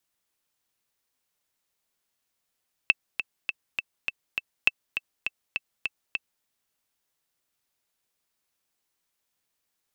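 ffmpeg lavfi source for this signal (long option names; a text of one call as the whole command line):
ffmpeg -f lavfi -i "aevalsrc='pow(10,(-4.5-9.5*gte(mod(t,6*60/203),60/203))/20)*sin(2*PI*2650*mod(t,60/203))*exp(-6.91*mod(t,60/203)/0.03)':duration=3.54:sample_rate=44100" out.wav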